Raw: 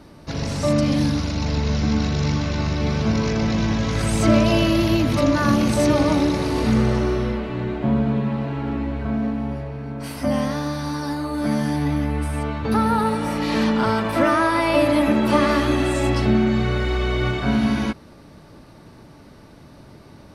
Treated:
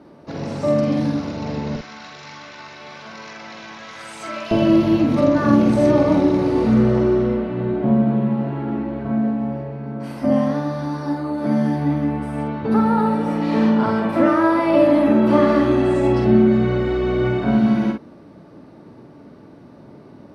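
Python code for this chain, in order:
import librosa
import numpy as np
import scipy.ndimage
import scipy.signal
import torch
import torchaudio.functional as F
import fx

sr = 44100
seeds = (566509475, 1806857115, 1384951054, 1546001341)

y = fx.highpass(x, sr, hz=fx.steps((0.0, 330.0), (1.76, 1300.0), (4.51, 260.0)), slope=12)
y = fx.tilt_eq(y, sr, slope=-4.0)
y = fx.doubler(y, sr, ms=49.0, db=-5.0)
y = F.gain(torch.from_numpy(y), -1.5).numpy()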